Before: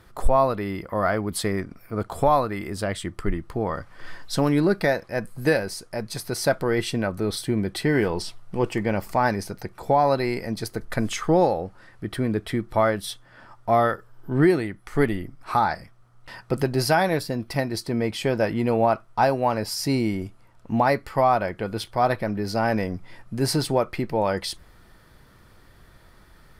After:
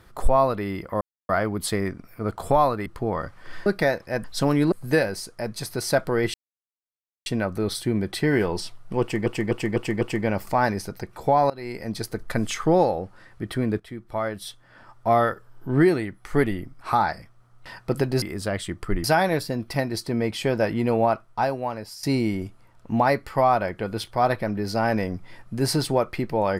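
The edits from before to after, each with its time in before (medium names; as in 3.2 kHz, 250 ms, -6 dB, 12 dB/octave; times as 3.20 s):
1.01 s: insert silence 0.28 s
2.58–3.40 s: move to 16.84 s
4.20–4.68 s: move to 5.26 s
6.88 s: insert silence 0.92 s
8.63–8.88 s: loop, 5 plays
10.12–10.59 s: fade in, from -22.5 dB
12.42–13.71 s: fade in, from -14 dB
18.75–19.83 s: fade out, to -13 dB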